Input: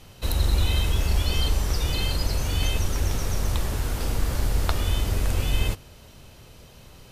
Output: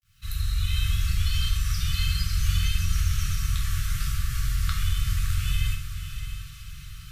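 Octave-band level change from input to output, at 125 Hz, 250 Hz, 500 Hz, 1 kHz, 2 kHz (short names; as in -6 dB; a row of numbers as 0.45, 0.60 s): -0.5 dB, -8.0 dB, under -40 dB, -7.5 dB, -1.0 dB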